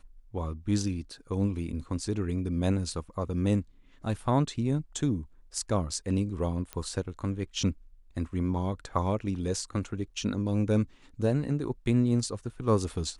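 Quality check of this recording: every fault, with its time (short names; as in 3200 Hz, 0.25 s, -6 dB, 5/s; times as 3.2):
6.73 pop -20 dBFS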